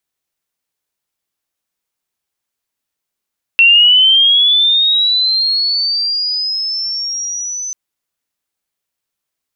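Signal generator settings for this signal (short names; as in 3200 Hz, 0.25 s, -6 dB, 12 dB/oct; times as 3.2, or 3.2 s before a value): chirp linear 2700 Hz -> 6100 Hz -4 dBFS -> -20 dBFS 4.14 s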